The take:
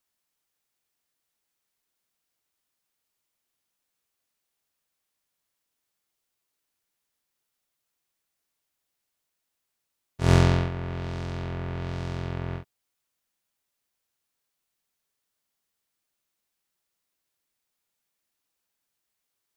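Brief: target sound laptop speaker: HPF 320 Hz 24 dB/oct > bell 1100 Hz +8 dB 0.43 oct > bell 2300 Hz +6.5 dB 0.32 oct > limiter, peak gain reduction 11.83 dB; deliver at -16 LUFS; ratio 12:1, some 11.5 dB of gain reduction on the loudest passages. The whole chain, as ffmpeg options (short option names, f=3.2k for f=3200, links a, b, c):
-af "acompressor=threshold=-25dB:ratio=12,highpass=f=320:w=0.5412,highpass=f=320:w=1.3066,equalizer=f=1.1k:t=o:w=0.43:g=8,equalizer=f=2.3k:t=o:w=0.32:g=6.5,volume=27.5dB,alimiter=limit=-1.5dB:level=0:latency=1"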